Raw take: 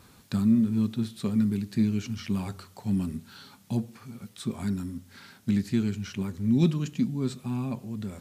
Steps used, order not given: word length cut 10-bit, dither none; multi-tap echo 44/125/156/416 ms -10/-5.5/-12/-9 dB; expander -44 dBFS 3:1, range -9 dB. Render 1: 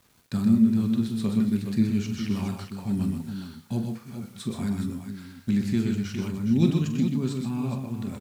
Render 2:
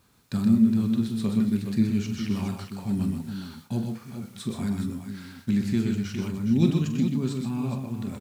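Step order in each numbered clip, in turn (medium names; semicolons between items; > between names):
expander > multi-tap echo > word length cut; multi-tap echo > word length cut > expander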